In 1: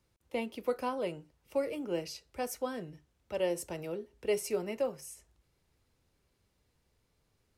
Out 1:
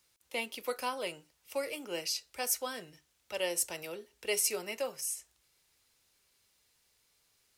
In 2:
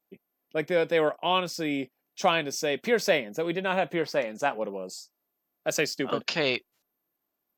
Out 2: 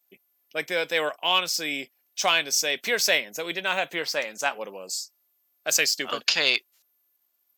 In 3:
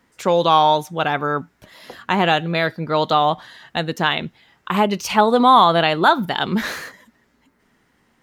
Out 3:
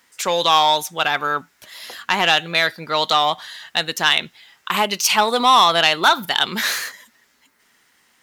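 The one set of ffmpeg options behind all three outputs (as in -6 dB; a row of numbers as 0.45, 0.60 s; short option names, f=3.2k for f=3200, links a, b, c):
-filter_complex "[0:a]asplit=2[a][b];[b]highpass=f=720:p=1,volume=9dB,asoftclip=type=tanh:threshold=-1dB[c];[a][c]amix=inputs=2:normalize=0,lowpass=f=4.4k:p=1,volume=-6dB,crystalizer=i=7:c=0,volume=-6.5dB"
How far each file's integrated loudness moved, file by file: +1.0, +3.0, +0.5 LU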